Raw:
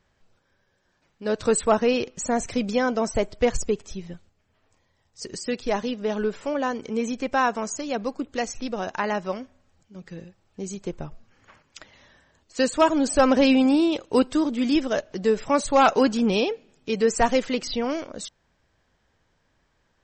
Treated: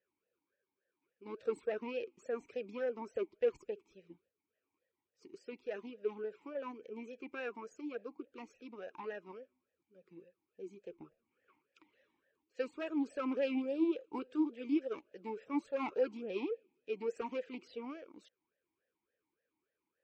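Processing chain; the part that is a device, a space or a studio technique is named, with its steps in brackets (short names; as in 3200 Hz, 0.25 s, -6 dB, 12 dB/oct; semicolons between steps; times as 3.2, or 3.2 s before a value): talk box (tube stage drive 15 dB, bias 0.7; vowel sweep e-u 3.5 Hz); gain -2.5 dB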